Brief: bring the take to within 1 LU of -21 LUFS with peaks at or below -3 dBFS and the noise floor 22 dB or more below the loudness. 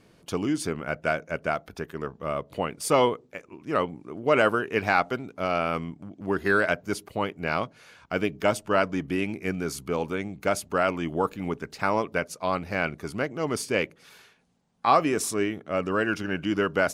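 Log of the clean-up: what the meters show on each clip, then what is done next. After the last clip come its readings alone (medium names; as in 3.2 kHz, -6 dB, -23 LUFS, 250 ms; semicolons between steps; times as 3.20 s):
loudness -27.0 LUFS; peak level -8.0 dBFS; loudness target -21.0 LUFS
-> trim +6 dB; peak limiter -3 dBFS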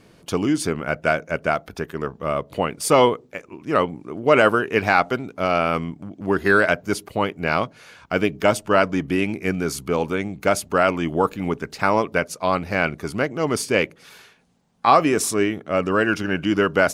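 loudness -21.5 LUFS; peak level -3.0 dBFS; noise floor -53 dBFS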